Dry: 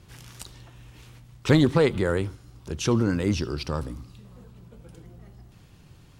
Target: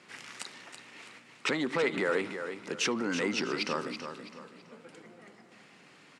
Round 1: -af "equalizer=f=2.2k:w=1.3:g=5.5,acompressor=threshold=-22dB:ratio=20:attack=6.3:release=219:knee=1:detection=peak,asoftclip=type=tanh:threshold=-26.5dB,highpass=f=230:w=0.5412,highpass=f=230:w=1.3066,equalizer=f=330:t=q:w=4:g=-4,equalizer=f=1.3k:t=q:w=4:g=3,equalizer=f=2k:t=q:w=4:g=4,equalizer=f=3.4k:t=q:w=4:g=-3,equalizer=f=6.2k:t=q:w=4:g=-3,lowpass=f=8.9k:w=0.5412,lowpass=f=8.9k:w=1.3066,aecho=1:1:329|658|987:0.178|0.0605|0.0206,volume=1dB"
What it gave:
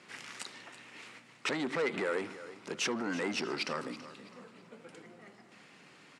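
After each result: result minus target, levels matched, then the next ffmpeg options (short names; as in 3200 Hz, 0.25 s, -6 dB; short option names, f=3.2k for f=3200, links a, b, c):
soft clip: distortion +13 dB; echo-to-direct -6.5 dB
-af "equalizer=f=2.2k:w=1.3:g=5.5,acompressor=threshold=-22dB:ratio=20:attack=6.3:release=219:knee=1:detection=peak,asoftclip=type=tanh:threshold=-16dB,highpass=f=230:w=0.5412,highpass=f=230:w=1.3066,equalizer=f=330:t=q:w=4:g=-4,equalizer=f=1.3k:t=q:w=4:g=3,equalizer=f=2k:t=q:w=4:g=4,equalizer=f=3.4k:t=q:w=4:g=-3,equalizer=f=6.2k:t=q:w=4:g=-3,lowpass=f=8.9k:w=0.5412,lowpass=f=8.9k:w=1.3066,aecho=1:1:329|658|987:0.178|0.0605|0.0206,volume=1dB"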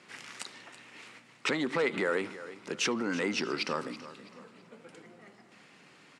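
echo-to-direct -6.5 dB
-af "equalizer=f=2.2k:w=1.3:g=5.5,acompressor=threshold=-22dB:ratio=20:attack=6.3:release=219:knee=1:detection=peak,asoftclip=type=tanh:threshold=-16dB,highpass=f=230:w=0.5412,highpass=f=230:w=1.3066,equalizer=f=330:t=q:w=4:g=-4,equalizer=f=1.3k:t=q:w=4:g=3,equalizer=f=2k:t=q:w=4:g=4,equalizer=f=3.4k:t=q:w=4:g=-3,equalizer=f=6.2k:t=q:w=4:g=-3,lowpass=f=8.9k:w=0.5412,lowpass=f=8.9k:w=1.3066,aecho=1:1:329|658|987|1316:0.376|0.128|0.0434|0.0148,volume=1dB"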